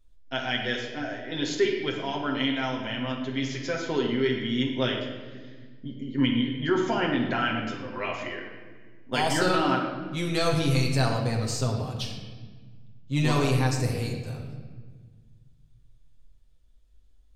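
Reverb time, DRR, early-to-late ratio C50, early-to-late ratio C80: 1.5 s, -1.0 dB, 4.0 dB, 6.0 dB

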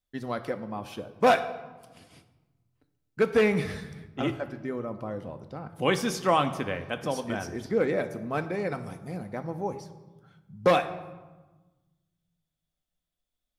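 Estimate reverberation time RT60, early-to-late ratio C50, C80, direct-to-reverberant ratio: 1.2 s, 12.5 dB, 14.5 dB, 8.0 dB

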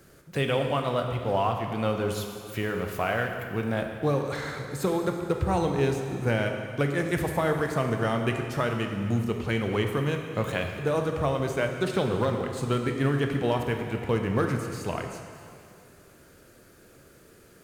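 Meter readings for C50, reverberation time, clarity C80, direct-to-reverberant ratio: 5.0 dB, 2.4 s, 6.0 dB, 3.5 dB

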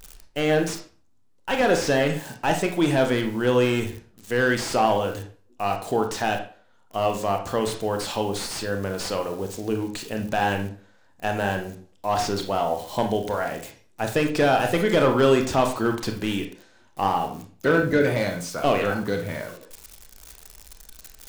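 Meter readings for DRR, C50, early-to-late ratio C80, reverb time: 4.0 dB, 8.5 dB, 13.5 dB, 0.40 s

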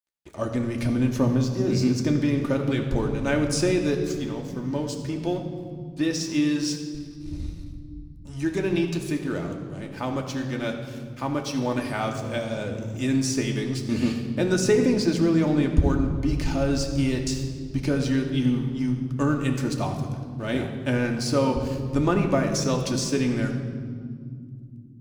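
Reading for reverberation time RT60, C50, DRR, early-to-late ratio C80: not exponential, 7.0 dB, 1.5 dB, 8.0 dB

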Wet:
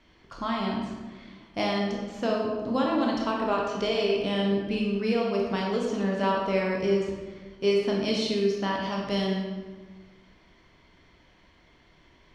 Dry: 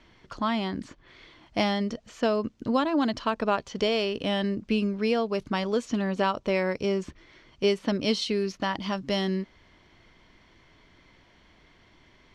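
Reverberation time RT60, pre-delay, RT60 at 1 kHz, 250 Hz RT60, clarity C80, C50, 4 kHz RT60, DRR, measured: 1.4 s, 17 ms, 1.3 s, 1.6 s, 3.0 dB, 1.0 dB, 0.90 s, -2.0 dB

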